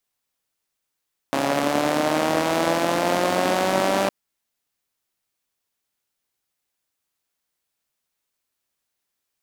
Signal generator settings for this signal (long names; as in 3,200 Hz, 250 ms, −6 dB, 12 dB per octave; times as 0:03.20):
pulse-train model of a four-cylinder engine, changing speed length 2.76 s, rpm 4,100, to 5,900, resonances 300/580 Hz